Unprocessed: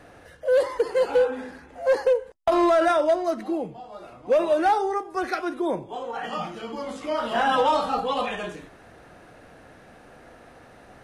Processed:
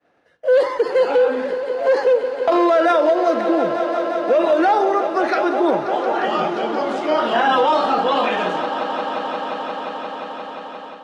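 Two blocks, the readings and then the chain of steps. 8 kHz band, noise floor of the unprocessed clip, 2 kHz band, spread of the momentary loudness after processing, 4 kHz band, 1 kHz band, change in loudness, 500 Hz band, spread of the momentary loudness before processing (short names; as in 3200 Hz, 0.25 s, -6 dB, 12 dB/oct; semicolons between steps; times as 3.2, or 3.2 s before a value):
n/a, -50 dBFS, +7.0 dB, 11 LU, +7.0 dB, +7.0 dB, +5.5 dB, +6.5 dB, 14 LU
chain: expander -38 dBFS; three-band isolator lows -18 dB, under 160 Hz, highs -16 dB, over 5800 Hz; swelling echo 0.176 s, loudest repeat 5, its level -16 dB; AGC gain up to 5 dB; maximiser +10.5 dB; gain -7 dB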